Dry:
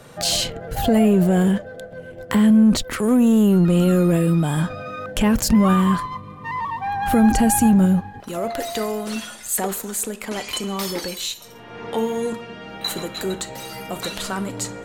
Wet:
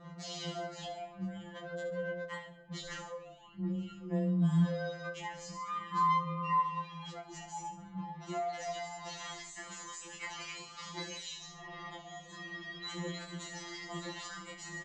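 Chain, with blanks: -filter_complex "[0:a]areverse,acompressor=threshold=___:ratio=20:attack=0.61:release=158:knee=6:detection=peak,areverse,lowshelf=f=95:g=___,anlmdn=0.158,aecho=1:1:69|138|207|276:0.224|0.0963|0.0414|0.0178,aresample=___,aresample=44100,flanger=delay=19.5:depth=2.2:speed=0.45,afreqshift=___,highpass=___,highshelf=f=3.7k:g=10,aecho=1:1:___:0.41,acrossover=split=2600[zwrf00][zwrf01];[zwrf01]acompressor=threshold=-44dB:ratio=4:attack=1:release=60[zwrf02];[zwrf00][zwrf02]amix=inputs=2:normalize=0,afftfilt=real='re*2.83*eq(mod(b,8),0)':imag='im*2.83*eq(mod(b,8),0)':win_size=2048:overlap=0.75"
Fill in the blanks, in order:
-28dB, 4.5, 16000, 13, 43, 1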